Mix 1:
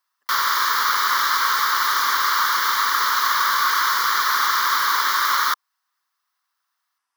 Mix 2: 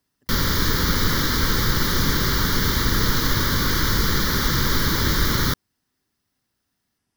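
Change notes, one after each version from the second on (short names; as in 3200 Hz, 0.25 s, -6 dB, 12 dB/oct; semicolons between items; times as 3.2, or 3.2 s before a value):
speech +3.5 dB; master: remove resonant high-pass 1100 Hz, resonance Q 4.4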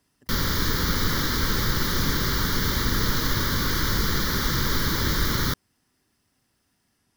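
speech +7.0 dB; background -3.5 dB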